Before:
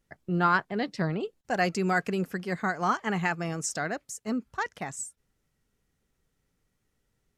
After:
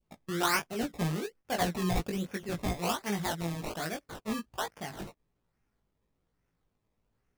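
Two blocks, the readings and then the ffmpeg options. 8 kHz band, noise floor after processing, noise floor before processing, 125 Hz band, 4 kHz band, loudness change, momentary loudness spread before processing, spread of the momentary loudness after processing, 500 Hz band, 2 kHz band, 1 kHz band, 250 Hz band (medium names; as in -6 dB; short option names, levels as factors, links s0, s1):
-2.5 dB, -80 dBFS, -77 dBFS, -2.5 dB, +3.5 dB, -4.0 dB, 10 LU, 9 LU, -4.0 dB, -7.0 dB, -6.0 dB, -3.5 dB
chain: -af "acrusher=samples=21:mix=1:aa=0.000001:lfo=1:lforange=21:lforate=1.2,flanger=delay=17:depth=2.9:speed=1.1,adynamicequalizer=threshold=0.00631:dfrequency=1200:dqfactor=0.77:tfrequency=1200:tqfactor=0.77:attack=5:release=100:ratio=0.375:range=2.5:mode=cutabove:tftype=bell"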